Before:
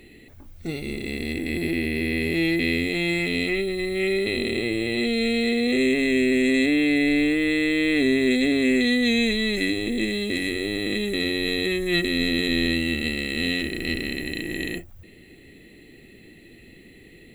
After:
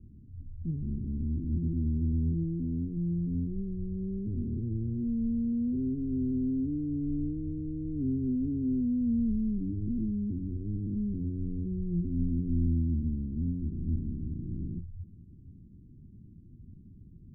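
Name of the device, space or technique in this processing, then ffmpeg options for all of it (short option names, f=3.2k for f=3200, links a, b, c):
the neighbour's flat through the wall: -filter_complex "[0:a]asettb=1/sr,asplit=3[a][b][c];[a]atrim=end=2.434[d];[b]atrim=start=2.43:end=2.97,asetpts=PTS-STARTPTS,afade=t=in:d=0.004:c=qsin,afade=t=out:st=0.536:d=0.004:c=qsin,equalizer=f=72:t=o:w=1.3:g=-8.5[e];[c]atrim=start=2.966[f];[d][e]acrossfade=d=0.004:c1=hsin:c2=qsin[g];[g][f]acrossfade=d=0.004:c1=qsin:c2=hsin,lowpass=f=200:w=0.5412,lowpass=f=200:w=1.3066,equalizer=f=94:t=o:w=0.79:g=6,volume=1.5dB"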